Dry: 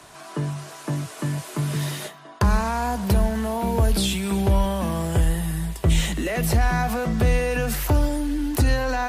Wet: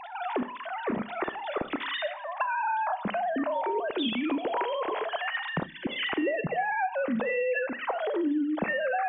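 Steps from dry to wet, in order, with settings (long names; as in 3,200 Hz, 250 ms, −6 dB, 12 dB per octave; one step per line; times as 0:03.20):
three sine waves on the formant tracks
downward compressor 5 to 1, threshold −32 dBFS, peak gain reduction 18.5 dB
four-comb reverb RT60 0.49 s, combs from 29 ms, DRR 12.5 dB
gain on a spectral selection 0:05.66–0:05.87, 370–1,500 Hz −20 dB
level +4 dB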